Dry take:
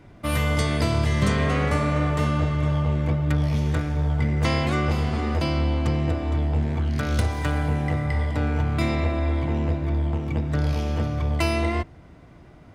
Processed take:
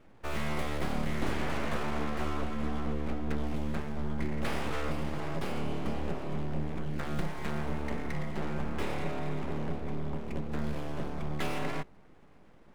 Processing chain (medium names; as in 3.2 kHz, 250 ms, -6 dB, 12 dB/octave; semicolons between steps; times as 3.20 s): median filter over 9 samples; full-wave rectifier; trim -7.5 dB